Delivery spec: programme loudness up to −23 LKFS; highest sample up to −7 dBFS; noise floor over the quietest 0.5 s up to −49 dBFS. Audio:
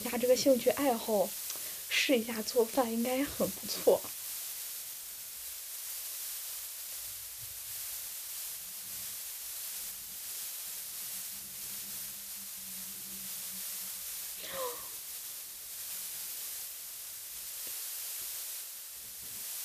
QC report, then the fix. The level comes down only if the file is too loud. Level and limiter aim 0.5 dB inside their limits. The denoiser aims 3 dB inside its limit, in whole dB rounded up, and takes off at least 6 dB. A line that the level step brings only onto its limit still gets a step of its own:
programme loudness −35.5 LKFS: in spec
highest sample −13.5 dBFS: in spec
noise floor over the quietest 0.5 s −45 dBFS: out of spec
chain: broadband denoise 7 dB, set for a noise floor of −45 dBFS

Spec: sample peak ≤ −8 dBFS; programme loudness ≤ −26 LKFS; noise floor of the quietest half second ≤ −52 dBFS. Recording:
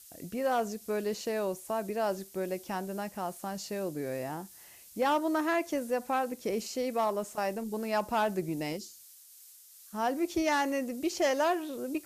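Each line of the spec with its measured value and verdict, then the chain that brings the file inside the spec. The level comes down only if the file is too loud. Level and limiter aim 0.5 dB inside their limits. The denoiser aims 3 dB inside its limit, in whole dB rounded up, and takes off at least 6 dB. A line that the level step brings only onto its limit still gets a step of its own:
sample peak −18.5 dBFS: in spec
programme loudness −32.5 LKFS: in spec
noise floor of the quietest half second −55 dBFS: in spec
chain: no processing needed

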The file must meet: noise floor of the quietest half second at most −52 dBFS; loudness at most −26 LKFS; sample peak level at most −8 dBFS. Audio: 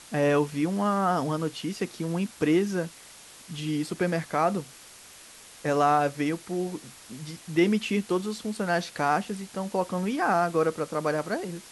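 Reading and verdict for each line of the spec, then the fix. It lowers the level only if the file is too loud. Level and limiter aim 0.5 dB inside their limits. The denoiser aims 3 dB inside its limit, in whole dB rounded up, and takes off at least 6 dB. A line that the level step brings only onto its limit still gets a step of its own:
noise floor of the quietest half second −49 dBFS: out of spec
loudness −27.5 LKFS: in spec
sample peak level −10.5 dBFS: in spec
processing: broadband denoise 6 dB, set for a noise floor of −49 dBFS

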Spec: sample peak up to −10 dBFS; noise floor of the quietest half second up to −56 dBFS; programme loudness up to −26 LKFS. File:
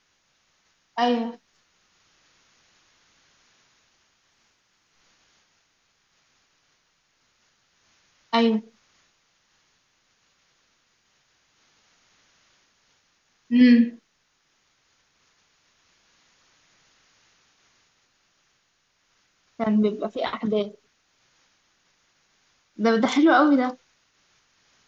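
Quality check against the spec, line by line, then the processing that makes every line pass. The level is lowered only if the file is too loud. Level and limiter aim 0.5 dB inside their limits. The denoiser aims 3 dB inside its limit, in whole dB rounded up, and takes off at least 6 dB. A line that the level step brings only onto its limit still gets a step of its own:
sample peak −6.0 dBFS: out of spec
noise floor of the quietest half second −69 dBFS: in spec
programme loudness −22.0 LKFS: out of spec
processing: level −4.5 dB

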